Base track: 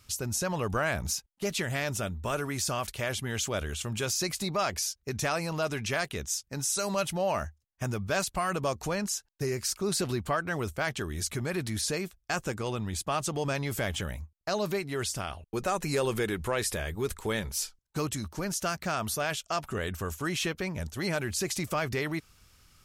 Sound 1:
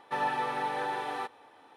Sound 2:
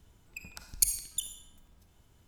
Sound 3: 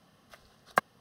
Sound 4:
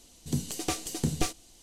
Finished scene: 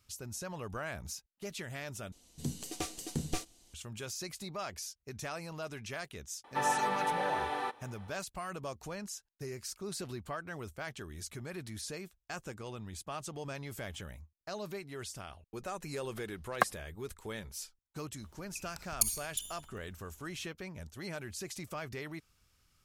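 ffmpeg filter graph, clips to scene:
-filter_complex "[0:a]volume=-11dB[a];[3:a]agate=range=-33dB:threshold=-54dB:ratio=3:release=100:detection=peak[b];[a]asplit=2[c][d];[c]atrim=end=2.124[e];[4:a]atrim=end=1.62,asetpts=PTS-STARTPTS,volume=-7dB[f];[d]atrim=start=3.736[g];[1:a]atrim=end=1.76,asetpts=PTS-STARTPTS,volume=-0.5dB,afade=t=in:d=0.004:c=hsin,afade=t=out:st=1.756:d=0.004:c=hsin,adelay=6440[h];[b]atrim=end=1,asetpts=PTS-STARTPTS,volume=-2dB,afade=t=in:d=0.004:c=hsin,afade=t=out:st=0.996:d=0.004:c=hsin,adelay=15840[i];[2:a]atrim=end=2.27,asetpts=PTS-STARTPTS,volume=-3.5dB,afade=t=in:d=0.004:c=hsin,afade=t=out:st=2.266:d=0.004:c=hsin,adelay=18190[j];[e][f]acrossfade=d=0.004:c1=hsin:c2=hsin[k];[k][g]acrossfade=d=0.004:c1=hsin:c2=hsin[l];[l][h][i][j]amix=inputs=4:normalize=0"

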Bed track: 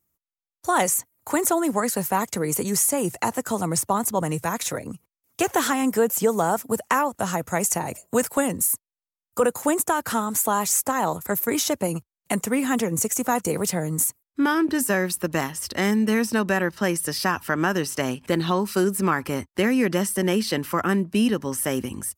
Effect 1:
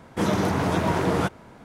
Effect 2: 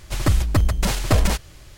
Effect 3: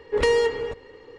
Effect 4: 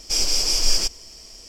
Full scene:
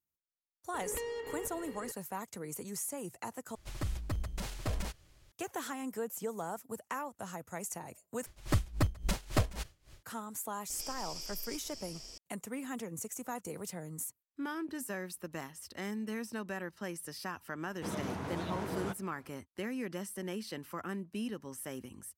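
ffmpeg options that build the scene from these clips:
-filter_complex "[2:a]asplit=2[a][b];[0:a]volume=-17.5dB[c];[3:a]acompressor=threshold=-38dB:ratio=6:attack=3.2:release=140:knee=1:detection=peak[d];[b]aeval=exprs='val(0)*pow(10,-20*(0.5-0.5*cos(2*PI*3.6*n/s))/20)':c=same[e];[4:a]acompressor=threshold=-35dB:ratio=6:attack=3.2:release=140:knee=1:detection=peak[f];[c]asplit=3[g][h][i];[g]atrim=end=3.554[j];[a]atrim=end=1.77,asetpts=PTS-STARTPTS,volume=-18dB[k];[h]atrim=start=5.316:end=8.264[l];[e]atrim=end=1.77,asetpts=PTS-STARTPTS,volume=-9.5dB[m];[i]atrim=start=10.026[n];[d]atrim=end=1.18,asetpts=PTS-STARTPTS,volume=-1dB,afade=t=in:d=0.004:c=hsin,afade=t=out:st=1.176:d=0.004:c=hsin,adelay=740[o];[f]atrim=end=1.48,asetpts=PTS-STARTPTS,volume=-6dB,afade=t=in:d=0.004:c=hsin,afade=t=out:st=1.476:d=0.004:c=hsin,adelay=10700[p];[1:a]atrim=end=1.64,asetpts=PTS-STARTPTS,volume=-15.5dB,afade=t=in:d=0.004:c=hsin,afade=t=out:st=1.636:d=0.004:c=hsin,adelay=17650[q];[j][k]acrossfade=d=0.004:c1=hsin:c2=hsin[r];[r][l]acrossfade=d=0.004:c1=hsin:c2=hsin[s];[s][m]acrossfade=d=0.004:c1=hsin:c2=hsin[t];[t][n]acrossfade=d=0.004:c1=hsin:c2=hsin[u];[u][o][p][q]amix=inputs=4:normalize=0"

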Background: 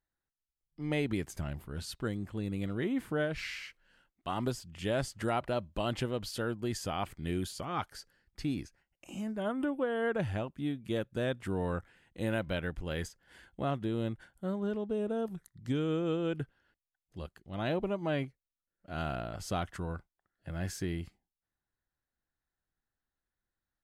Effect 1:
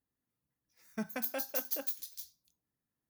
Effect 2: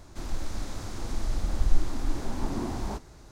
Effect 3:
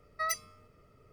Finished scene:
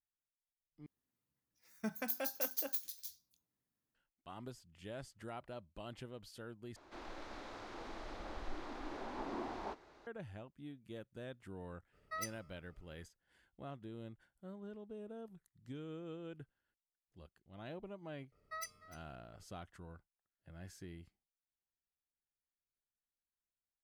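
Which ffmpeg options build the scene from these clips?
-filter_complex "[3:a]asplit=2[a][b];[0:a]volume=-15.5dB[c];[1:a]bandreject=f=50:t=h:w=6,bandreject=f=100:t=h:w=6,bandreject=f=150:t=h:w=6[d];[2:a]acrossover=split=310 3900:gain=0.1 1 0.0794[e][f][g];[e][f][g]amix=inputs=3:normalize=0[h];[b]aecho=1:1:300:0.158[i];[c]asplit=3[j][k][l];[j]atrim=end=0.864[m];[d]atrim=end=3.09,asetpts=PTS-STARTPTS,volume=-2.5dB[n];[k]atrim=start=3.946:end=6.764[o];[h]atrim=end=3.31,asetpts=PTS-STARTPTS,volume=-4.5dB[p];[l]atrim=start=10.066[q];[a]atrim=end=1.12,asetpts=PTS-STARTPTS,volume=-10dB,afade=t=in:d=0.02,afade=t=out:st=1.1:d=0.02,adelay=11920[r];[i]atrim=end=1.12,asetpts=PTS-STARTPTS,volume=-12.5dB,afade=t=in:d=0.004:c=hsin,afade=t=out:st=1.116:d=0.004:c=hsin,adelay=18320[s];[m][n]acrossfade=d=0.004:c1=hsin:c2=hsin[t];[t][o]acrossfade=d=0.004:c1=hsin:c2=hsin[u];[u][p]acrossfade=d=0.004:c1=hsin:c2=hsin[v];[v][q]acrossfade=d=0.004:c1=hsin:c2=hsin[w];[w][r][s]amix=inputs=3:normalize=0"

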